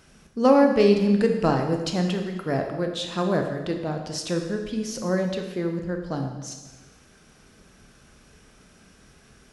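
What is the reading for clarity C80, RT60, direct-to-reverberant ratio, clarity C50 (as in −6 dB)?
8.0 dB, 1.2 s, 3.5 dB, 6.0 dB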